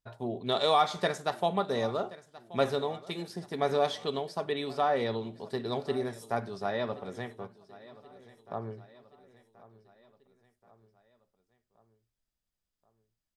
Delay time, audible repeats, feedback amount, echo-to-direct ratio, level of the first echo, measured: 1079 ms, 3, 53%, -18.0 dB, -19.5 dB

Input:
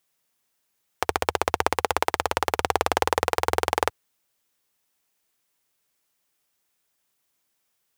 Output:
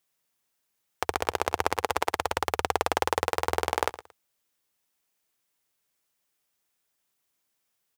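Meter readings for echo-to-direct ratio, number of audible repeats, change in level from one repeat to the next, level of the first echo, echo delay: -15.5 dB, 2, -13.0 dB, -15.5 dB, 113 ms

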